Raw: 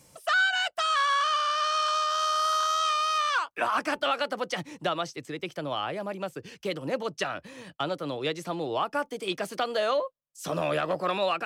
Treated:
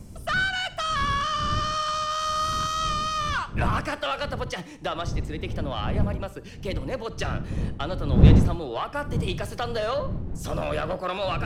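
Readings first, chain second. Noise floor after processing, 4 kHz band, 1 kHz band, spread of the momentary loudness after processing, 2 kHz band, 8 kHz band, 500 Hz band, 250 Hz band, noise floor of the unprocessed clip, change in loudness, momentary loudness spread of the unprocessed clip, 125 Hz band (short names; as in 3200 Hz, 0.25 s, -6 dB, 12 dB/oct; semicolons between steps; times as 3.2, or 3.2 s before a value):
-42 dBFS, -1.0 dB, -1.0 dB, 8 LU, -1.0 dB, 0.0 dB, -0.5 dB, +8.0 dB, -62 dBFS, +1.5 dB, 11 LU, +18.5 dB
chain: one diode to ground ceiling -19.5 dBFS; wind noise 130 Hz -27 dBFS; Schroeder reverb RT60 0.54 s, DRR 14.5 dB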